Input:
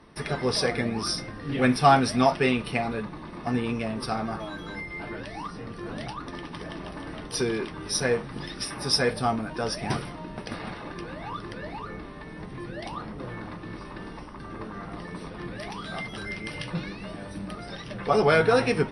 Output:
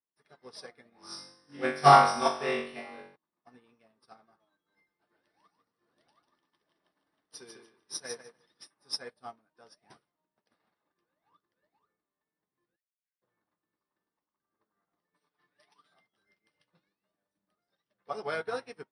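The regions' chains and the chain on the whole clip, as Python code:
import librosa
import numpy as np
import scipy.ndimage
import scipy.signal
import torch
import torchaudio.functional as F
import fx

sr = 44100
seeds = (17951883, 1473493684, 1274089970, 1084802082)

y = fx.chain(x, sr, fx.high_shelf(hz=6100.0, db=-4.0),
    fx.room_flutter(wall_m=3.6, rt60_s=1.2), at=(0.9, 3.16))
y = fx.chain(y, sr, fx.high_shelf(hz=2300.0, db=4.0),
    fx.echo_feedback(ms=147, feedback_pct=33, wet_db=-4), at=(4.72, 8.67))
y = fx.chain(y, sr, fx.cheby_ripple_highpass(hz=1500.0, ripple_db=6),
    fx.gate_flip(shuts_db=-43.0, range_db=-30), at=(12.76, 13.22))
y = fx.chain(y, sr, fx.tilt_shelf(db=-4.5, hz=700.0),
    fx.comb(ms=6.8, depth=0.74), at=(15.14, 15.94))
y = fx.highpass(y, sr, hz=480.0, slope=6)
y = fx.peak_eq(y, sr, hz=2500.0, db=-4.5, octaves=0.53)
y = fx.upward_expand(y, sr, threshold_db=-44.0, expansion=2.5)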